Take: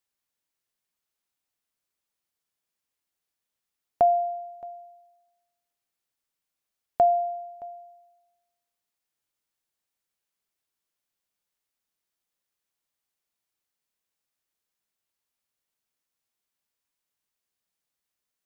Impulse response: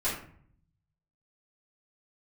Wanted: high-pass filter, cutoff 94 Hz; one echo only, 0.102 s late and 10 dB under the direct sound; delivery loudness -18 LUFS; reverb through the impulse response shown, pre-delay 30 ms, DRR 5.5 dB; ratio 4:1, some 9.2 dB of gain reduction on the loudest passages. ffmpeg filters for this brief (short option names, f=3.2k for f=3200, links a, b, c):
-filter_complex "[0:a]highpass=94,acompressor=threshold=-27dB:ratio=4,aecho=1:1:102:0.316,asplit=2[a][b];[1:a]atrim=start_sample=2205,adelay=30[c];[b][c]afir=irnorm=-1:irlink=0,volume=-13.5dB[d];[a][d]amix=inputs=2:normalize=0,volume=11.5dB"